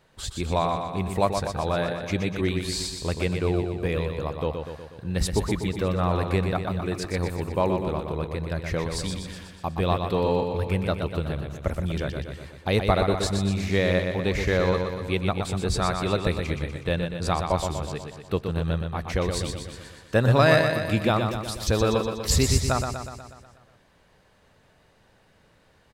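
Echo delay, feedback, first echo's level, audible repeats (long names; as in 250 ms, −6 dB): 122 ms, 59%, −6.0 dB, 7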